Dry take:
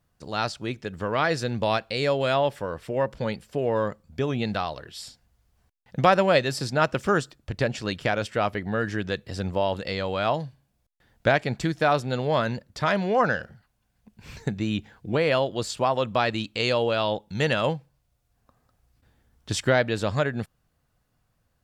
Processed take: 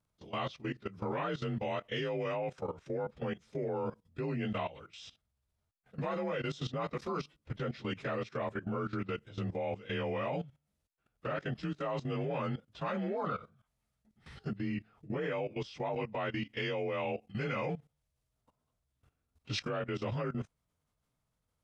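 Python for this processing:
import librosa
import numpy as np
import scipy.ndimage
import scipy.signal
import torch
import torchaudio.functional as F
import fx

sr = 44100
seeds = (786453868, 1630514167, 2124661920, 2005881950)

y = fx.partial_stretch(x, sr, pct=89)
y = fx.high_shelf(y, sr, hz=8100.0, db=-6.5, at=(14.6, 16.53))
y = fx.level_steps(y, sr, step_db=16)
y = y * 10.0 ** (-2.5 / 20.0)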